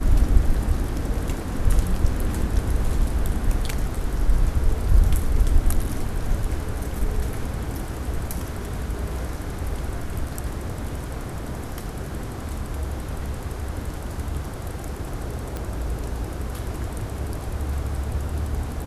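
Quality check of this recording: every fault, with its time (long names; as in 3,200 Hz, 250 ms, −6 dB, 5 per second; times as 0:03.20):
0:15.57: click −16 dBFS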